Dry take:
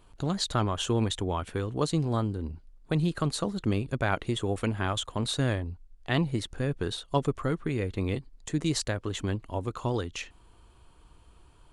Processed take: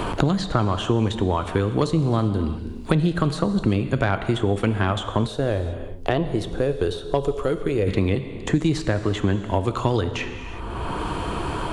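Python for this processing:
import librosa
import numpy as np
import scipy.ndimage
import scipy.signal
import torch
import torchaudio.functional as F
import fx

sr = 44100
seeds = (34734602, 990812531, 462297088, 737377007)

y = fx.high_shelf(x, sr, hz=4400.0, db=-11.0)
y = fx.rev_gated(y, sr, seeds[0], gate_ms=400, shape='falling', drr_db=10.0)
y = 10.0 ** (-14.5 / 20.0) * np.tanh(y / 10.0 ** (-14.5 / 20.0))
y = fx.graphic_eq(y, sr, hz=(125, 250, 500, 1000, 2000, 4000, 8000), db=(-11, -9, 3, -7, -10, -6, -7), at=(5.26, 7.86), fade=0.02)
y = fx.band_squash(y, sr, depth_pct=100)
y = y * librosa.db_to_amplitude(8.0)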